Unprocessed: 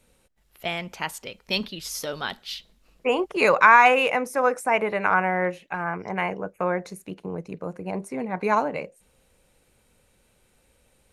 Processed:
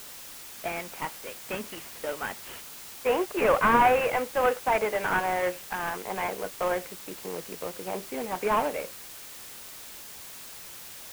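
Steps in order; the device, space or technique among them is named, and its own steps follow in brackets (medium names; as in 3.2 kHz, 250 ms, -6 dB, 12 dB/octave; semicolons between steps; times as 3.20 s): army field radio (band-pass 330–2800 Hz; CVSD coder 16 kbps; white noise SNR 14 dB)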